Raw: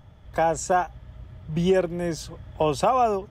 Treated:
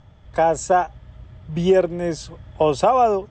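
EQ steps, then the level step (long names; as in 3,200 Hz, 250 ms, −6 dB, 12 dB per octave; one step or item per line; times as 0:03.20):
elliptic low-pass filter 7,900 Hz, stop band 40 dB
dynamic equaliser 510 Hz, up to +5 dB, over −31 dBFS, Q 0.84
+2.0 dB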